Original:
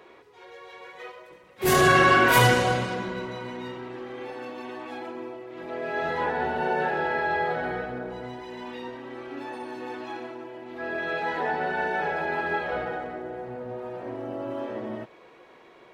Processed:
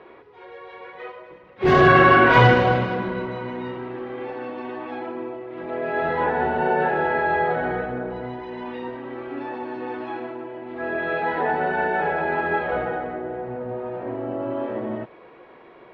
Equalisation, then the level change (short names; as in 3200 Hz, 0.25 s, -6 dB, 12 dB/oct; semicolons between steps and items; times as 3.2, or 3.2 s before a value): air absorption 190 m; high shelf 4100 Hz -7 dB; bell 8600 Hz -11 dB 0.76 oct; +6.0 dB